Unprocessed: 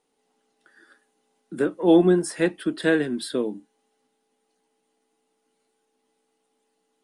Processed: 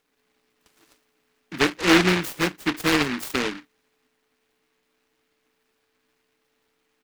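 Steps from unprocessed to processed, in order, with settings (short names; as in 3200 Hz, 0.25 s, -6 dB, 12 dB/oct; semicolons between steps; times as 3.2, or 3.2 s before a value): band shelf 2100 Hz -12.5 dB 1 oct; comb 7 ms, depth 41%; noise-modulated delay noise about 1700 Hz, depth 0.33 ms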